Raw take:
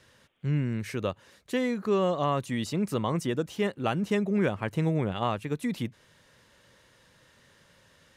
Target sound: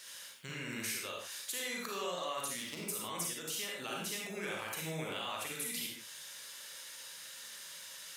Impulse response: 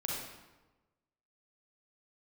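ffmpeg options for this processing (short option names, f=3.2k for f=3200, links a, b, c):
-filter_complex "[0:a]asplit=3[a][b][c];[a]afade=t=out:st=2.47:d=0.02[d];[b]adynamicsmooth=sensitivity=6:basefreq=670,afade=t=in:st=2.47:d=0.02,afade=t=out:st=2.88:d=0.02[e];[c]afade=t=in:st=2.88:d=0.02[f];[d][e][f]amix=inputs=3:normalize=0,alimiter=level_in=0.5dB:limit=-24dB:level=0:latency=1,volume=-0.5dB,aderivative,acompressor=threshold=-56dB:ratio=4[g];[1:a]atrim=start_sample=2205,afade=t=out:st=0.22:d=0.01,atrim=end_sample=10143[h];[g][h]afir=irnorm=-1:irlink=0,volume=17.5dB"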